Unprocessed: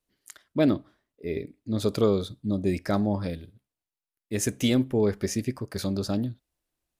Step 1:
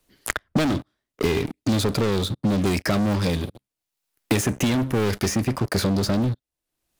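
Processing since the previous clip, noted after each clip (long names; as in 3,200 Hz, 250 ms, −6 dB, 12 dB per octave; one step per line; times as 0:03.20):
dynamic equaliser 500 Hz, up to −4 dB, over −35 dBFS, Q 0.76
leveller curve on the samples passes 5
multiband upward and downward compressor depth 100%
level −5 dB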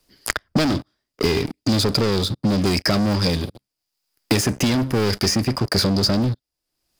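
parametric band 4,900 Hz +13 dB 0.24 octaves
level +2 dB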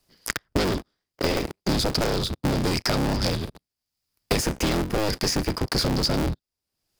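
sub-harmonics by changed cycles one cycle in 3, inverted
level −4.5 dB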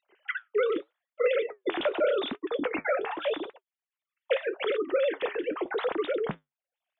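three sine waves on the formant tracks
flanger 0.84 Hz, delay 3.4 ms, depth 8 ms, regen −68%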